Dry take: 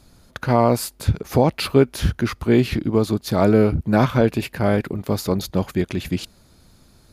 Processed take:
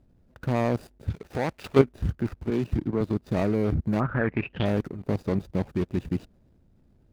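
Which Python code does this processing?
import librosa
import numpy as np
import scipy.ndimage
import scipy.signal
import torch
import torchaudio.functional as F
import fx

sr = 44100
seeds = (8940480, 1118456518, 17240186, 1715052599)

y = scipy.signal.medfilt(x, 41)
y = fx.lowpass_res(y, sr, hz=fx.line((3.99, 1200.0), (4.64, 3400.0)), q=9.4, at=(3.99, 4.64), fade=0.02)
y = fx.level_steps(y, sr, step_db=12)
y = fx.tilt_shelf(y, sr, db=-6.0, hz=650.0, at=(1.1, 1.79))
y = fx.band_widen(y, sr, depth_pct=100, at=(2.5, 3.01))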